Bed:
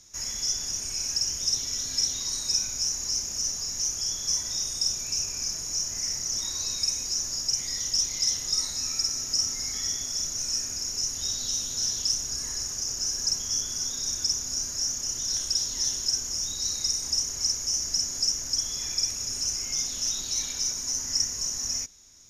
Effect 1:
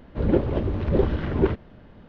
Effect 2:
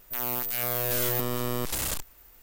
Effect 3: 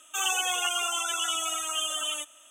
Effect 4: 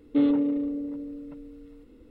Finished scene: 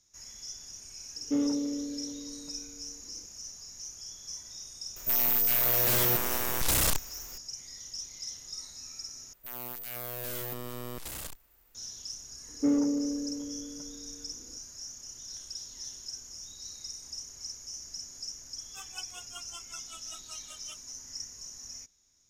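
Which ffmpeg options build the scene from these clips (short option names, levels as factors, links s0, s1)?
-filter_complex "[4:a]asplit=2[s0][s1];[2:a]asplit=2[s2][s3];[0:a]volume=0.188[s4];[s0]acrossover=split=3100[s5][s6];[s6]acompressor=threshold=0.00112:ratio=4:attack=1:release=60[s7];[s5][s7]amix=inputs=2:normalize=0[s8];[s2]aeval=exprs='0.158*sin(PI/2*3.16*val(0)/0.158)':c=same[s9];[s1]lowpass=f=2100:w=0.5412,lowpass=f=2100:w=1.3066[s10];[3:a]aeval=exprs='val(0)*pow(10,-27*(0.5-0.5*cos(2*PI*5.2*n/s))/20)':c=same[s11];[s4]asplit=2[s12][s13];[s12]atrim=end=9.334[s14];[s3]atrim=end=2.42,asetpts=PTS-STARTPTS,volume=0.316[s15];[s13]atrim=start=11.746[s16];[s8]atrim=end=2.1,asetpts=PTS-STARTPTS,volume=0.473,afade=t=in:d=0.004:c=hsin,afade=t=out:st=2.096:d=0.004:c=hsin,adelay=1160[s17];[s9]atrim=end=2.42,asetpts=PTS-STARTPTS,volume=0.501,afade=t=in:d=0.004:c=hsin,afade=t=out:st=2.416:d=0.004:c=hsin,adelay=4960[s18];[s10]atrim=end=2.1,asetpts=PTS-STARTPTS,volume=0.631,afade=t=in:d=0.004:c=hsin,afade=t=out:st=2.096:d=0.004:c=hsin,adelay=12480[s19];[s11]atrim=end=2.5,asetpts=PTS-STARTPTS,volume=0.2,afade=t=in:d=0.004:c=hsin,afade=t=out:st=2.496:d=0.004:c=hsin,adelay=820260S[s20];[s14][s15]acrossfade=d=0.004:c1=hsin:c2=hsin[s21];[s21][s16]acrossfade=d=0.004:c1=hsin:c2=hsin[s22];[s22][s17][s18][s19][s20]amix=inputs=5:normalize=0"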